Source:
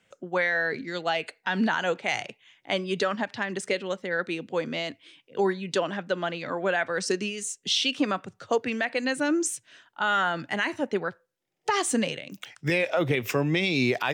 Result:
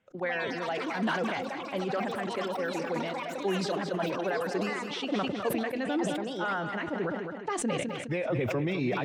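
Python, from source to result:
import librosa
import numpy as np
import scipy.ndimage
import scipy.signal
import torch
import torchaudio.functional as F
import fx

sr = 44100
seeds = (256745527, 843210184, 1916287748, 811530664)

p1 = fx.lowpass(x, sr, hz=1200.0, slope=6)
p2 = fx.level_steps(p1, sr, step_db=19)
p3 = p1 + (p2 * librosa.db_to_amplitude(-1.0))
p4 = fx.stretch_vocoder(p3, sr, factor=0.64)
p5 = fx.echo_pitch(p4, sr, ms=139, semitones=6, count=3, db_per_echo=-6.0)
p6 = p5 + fx.echo_feedback(p5, sr, ms=207, feedback_pct=41, wet_db=-10, dry=0)
p7 = fx.sustainer(p6, sr, db_per_s=29.0)
y = p7 * librosa.db_to_amplitude(-6.0)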